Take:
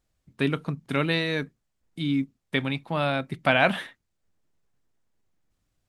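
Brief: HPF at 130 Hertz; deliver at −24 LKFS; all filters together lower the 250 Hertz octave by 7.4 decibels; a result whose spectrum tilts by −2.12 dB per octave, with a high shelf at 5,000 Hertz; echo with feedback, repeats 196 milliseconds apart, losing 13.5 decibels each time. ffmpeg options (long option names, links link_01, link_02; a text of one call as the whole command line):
ffmpeg -i in.wav -af "highpass=130,equalizer=frequency=250:width_type=o:gain=-9,highshelf=frequency=5000:gain=7,aecho=1:1:196|392:0.211|0.0444,volume=3.5dB" out.wav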